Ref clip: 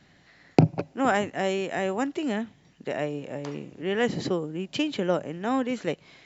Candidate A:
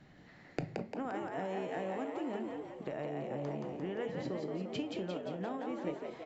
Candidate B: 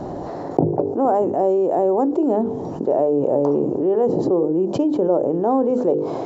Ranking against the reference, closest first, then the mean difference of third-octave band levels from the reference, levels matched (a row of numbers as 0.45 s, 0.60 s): A, B; 7.0 dB, 10.0 dB